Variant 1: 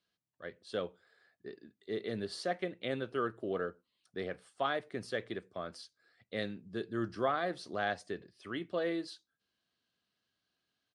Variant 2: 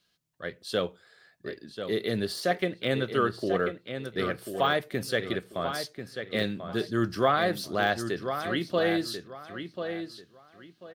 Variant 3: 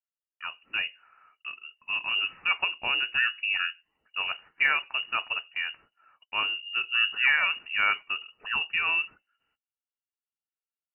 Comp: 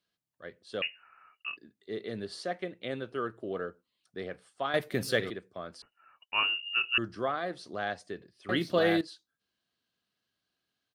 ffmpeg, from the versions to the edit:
-filter_complex "[2:a]asplit=2[s0][s1];[1:a]asplit=2[s2][s3];[0:a]asplit=5[s4][s5][s6][s7][s8];[s4]atrim=end=0.822[s9];[s0]atrim=start=0.818:end=1.572[s10];[s5]atrim=start=1.568:end=4.742[s11];[s2]atrim=start=4.738:end=5.302[s12];[s6]atrim=start=5.298:end=5.822[s13];[s1]atrim=start=5.818:end=6.982[s14];[s7]atrim=start=6.978:end=8.492[s15];[s3]atrim=start=8.488:end=9.012[s16];[s8]atrim=start=9.008[s17];[s9][s10]acrossfade=d=0.004:c1=hsin:c2=hsin[s18];[s18][s11]acrossfade=d=0.004:c1=hsin:c2=hsin[s19];[s19][s12]acrossfade=d=0.004:c1=hsin:c2=hsin[s20];[s20][s13]acrossfade=d=0.004:c1=hsin:c2=hsin[s21];[s21][s14]acrossfade=d=0.004:c1=hsin:c2=hsin[s22];[s22][s15]acrossfade=d=0.004:c1=hsin:c2=hsin[s23];[s23][s16]acrossfade=d=0.004:c1=hsin:c2=hsin[s24];[s24][s17]acrossfade=d=0.004:c1=hsin:c2=hsin"

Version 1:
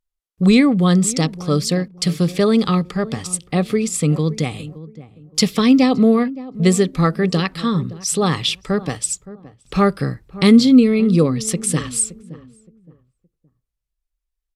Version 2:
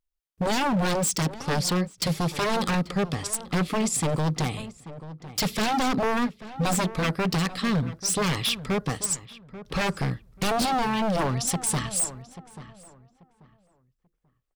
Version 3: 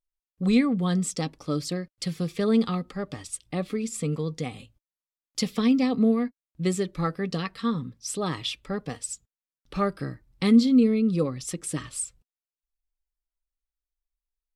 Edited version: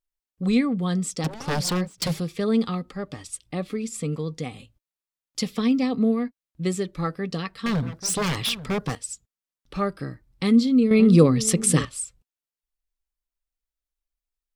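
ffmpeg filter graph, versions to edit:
-filter_complex "[1:a]asplit=2[s0][s1];[2:a]asplit=4[s2][s3][s4][s5];[s2]atrim=end=1.242[s6];[s0]atrim=start=1.238:end=2.202[s7];[s3]atrim=start=2.198:end=7.662[s8];[s1]atrim=start=7.658:end=8.952[s9];[s4]atrim=start=8.948:end=10.912[s10];[0:a]atrim=start=10.908:end=11.852[s11];[s5]atrim=start=11.848[s12];[s6][s7]acrossfade=d=0.004:c1=hsin:c2=hsin[s13];[s13][s8]acrossfade=d=0.004:c1=hsin:c2=hsin[s14];[s14][s9]acrossfade=d=0.004:c1=hsin:c2=hsin[s15];[s15][s10]acrossfade=d=0.004:c1=hsin:c2=hsin[s16];[s16][s11]acrossfade=d=0.004:c1=hsin:c2=hsin[s17];[s17][s12]acrossfade=d=0.004:c1=hsin:c2=hsin"

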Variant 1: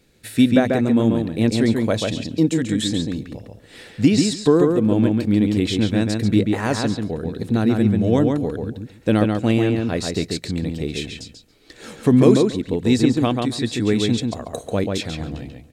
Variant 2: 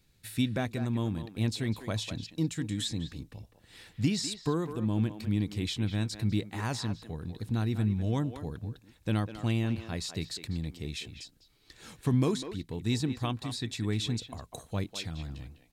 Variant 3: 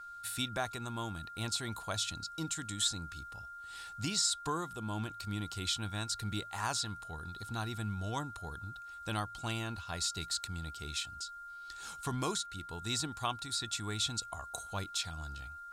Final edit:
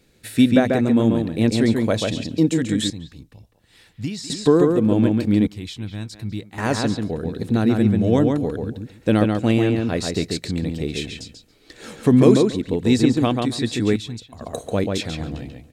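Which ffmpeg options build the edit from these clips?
-filter_complex "[1:a]asplit=3[s0][s1][s2];[0:a]asplit=4[s3][s4][s5][s6];[s3]atrim=end=2.902[s7];[s0]atrim=start=2.898:end=4.302[s8];[s4]atrim=start=4.298:end=5.472[s9];[s1]atrim=start=5.468:end=6.582[s10];[s5]atrim=start=6.578:end=13.962[s11];[s2]atrim=start=13.958:end=14.412[s12];[s6]atrim=start=14.408[s13];[s7][s8]acrossfade=d=0.004:c1=hsin:c2=hsin[s14];[s14][s9]acrossfade=d=0.004:c1=hsin:c2=hsin[s15];[s15][s10]acrossfade=d=0.004:c1=hsin:c2=hsin[s16];[s16][s11]acrossfade=d=0.004:c1=hsin:c2=hsin[s17];[s17][s12]acrossfade=d=0.004:c1=hsin:c2=hsin[s18];[s18][s13]acrossfade=d=0.004:c1=hsin:c2=hsin"

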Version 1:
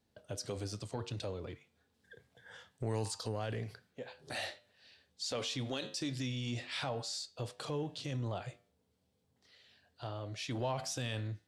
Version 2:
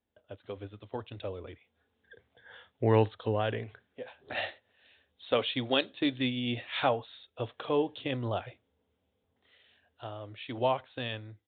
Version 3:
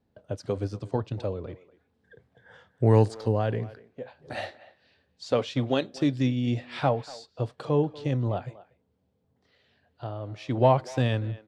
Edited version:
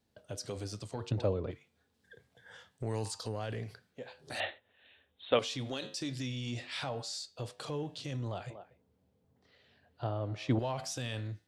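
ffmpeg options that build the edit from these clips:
-filter_complex "[2:a]asplit=2[s0][s1];[0:a]asplit=4[s2][s3][s4][s5];[s2]atrim=end=1.112[s6];[s0]atrim=start=1.108:end=1.512[s7];[s3]atrim=start=1.508:end=4.402[s8];[1:a]atrim=start=4.398:end=5.392[s9];[s4]atrim=start=5.388:end=8.502[s10];[s1]atrim=start=8.498:end=10.592[s11];[s5]atrim=start=10.588[s12];[s6][s7]acrossfade=d=0.004:c1=hsin:c2=hsin[s13];[s13][s8]acrossfade=d=0.004:c1=hsin:c2=hsin[s14];[s14][s9]acrossfade=d=0.004:c1=hsin:c2=hsin[s15];[s15][s10]acrossfade=d=0.004:c1=hsin:c2=hsin[s16];[s16][s11]acrossfade=d=0.004:c1=hsin:c2=hsin[s17];[s17][s12]acrossfade=d=0.004:c1=hsin:c2=hsin"

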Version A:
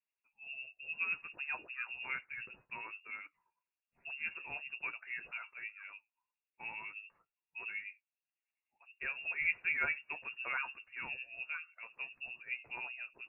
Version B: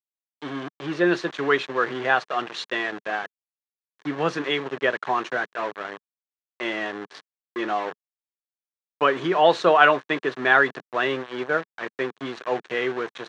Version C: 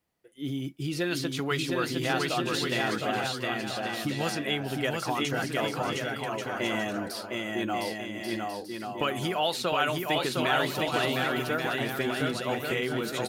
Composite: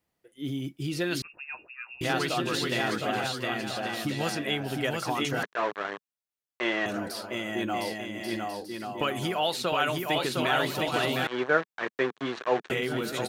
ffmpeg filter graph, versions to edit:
-filter_complex "[1:a]asplit=2[s0][s1];[2:a]asplit=4[s2][s3][s4][s5];[s2]atrim=end=1.222[s6];[0:a]atrim=start=1.218:end=2.012[s7];[s3]atrim=start=2.008:end=5.432[s8];[s0]atrim=start=5.428:end=6.862[s9];[s4]atrim=start=6.858:end=11.272[s10];[s1]atrim=start=11.268:end=12.702[s11];[s5]atrim=start=12.698[s12];[s6][s7]acrossfade=d=0.004:c1=hsin:c2=hsin[s13];[s13][s8]acrossfade=d=0.004:c1=hsin:c2=hsin[s14];[s14][s9]acrossfade=d=0.004:c1=hsin:c2=hsin[s15];[s15][s10]acrossfade=d=0.004:c1=hsin:c2=hsin[s16];[s16][s11]acrossfade=d=0.004:c1=hsin:c2=hsin[s17];[s17][s12]acrossfade=d=0.004:c1=hsin:c2=hsin"

